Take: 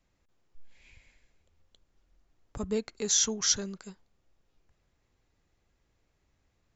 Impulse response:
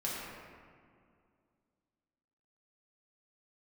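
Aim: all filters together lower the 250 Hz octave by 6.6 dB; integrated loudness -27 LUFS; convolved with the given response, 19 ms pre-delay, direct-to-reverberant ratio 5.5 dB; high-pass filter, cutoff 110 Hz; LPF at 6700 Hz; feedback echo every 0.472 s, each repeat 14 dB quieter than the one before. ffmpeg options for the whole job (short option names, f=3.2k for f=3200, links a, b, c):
-filter_complex "[0:a]highpass=110,lowpass=6.7k,equalizer=f=250:t=o:g=-8,aecho=1:1:472|944:0.2|0.0399,asplit=2[a][b];[1:a]atrim=start_sample=2205,adelay=19[c];[b][c]afir=irnorm=-1:irlink=0,volume=-10dB[d];[a][d]amix=inputs=2:normalize=0,volume=3dB"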